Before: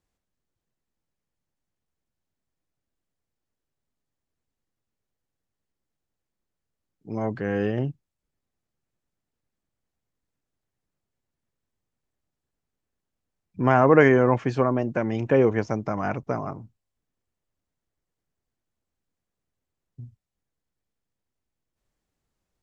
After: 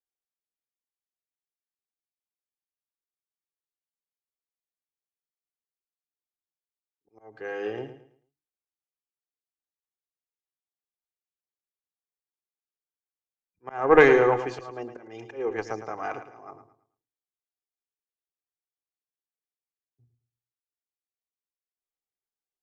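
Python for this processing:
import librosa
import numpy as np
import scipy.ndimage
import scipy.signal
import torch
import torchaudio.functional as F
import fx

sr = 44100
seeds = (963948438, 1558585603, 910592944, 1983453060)

p1 = fx.bass_treble(x, sr, bass_db=-14, treble_db=2)
p2 = fx.hum_notches(p1, sr, base_hz=50, count=7)
p3 = p2 + 0.53 * np.pad(p2, (int(2.5 * sr / 1000.0), 0))[:len(p2)]
p4 = fx.auto_swell(p3, sr, attack_ms=256.0)
p5 = fx.cheby_harmonics(p4, sr, harmonics=(2, 7), levels_db=(-12, -42), full_scale_db=-3.5)
p6 = p5 + fx.echo_feedback(p5, sr, ms=110, feedback_pct=38, wet_db=-10.0, dry=0)
p7 = fx.band_widen(p6, sr, depth_pct=40)
y = F.gain(torch.from_numpy(p7), -3.5).numpy()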